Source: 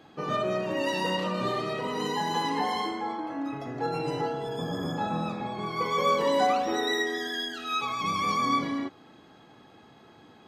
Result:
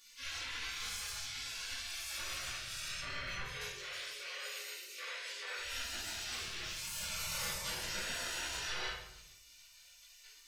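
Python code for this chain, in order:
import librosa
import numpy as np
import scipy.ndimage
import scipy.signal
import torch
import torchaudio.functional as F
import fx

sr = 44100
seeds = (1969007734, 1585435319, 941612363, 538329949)

y = 10.0 ** (-28.0 / 20.0) * np.tanh(x / 10.0 ** (-28.0 / 20.0))
y = fx.dynamic_eq(y, sr, hz=840.0, q=3.0, threshold_db=-46.0, ratio=4.0, max_db=4)
y = fx.over_compress(y, sr, threshold_db=-36.0, ratio=-1.0)
y = fx.steep_highpass(y, sr, hz=630.0, slope=48, at=(3.43, 5.6))
y = fx.spec_gate(y, sr, threshold_db=-30, keep='weak')
y = fx.room_shoebox(y, sr, seeds[0], volume_m3=250.0, walls='mixed', distance_m=2.4)
y = y * 10.0 ** (8.0 / 20.0)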